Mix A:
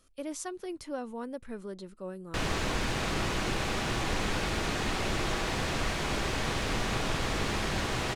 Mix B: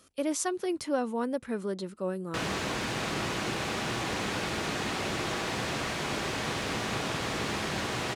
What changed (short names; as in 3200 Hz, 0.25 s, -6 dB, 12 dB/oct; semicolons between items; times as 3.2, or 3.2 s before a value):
speech +7.5 dB; master: add HPF 110 Hz 12 dB/oct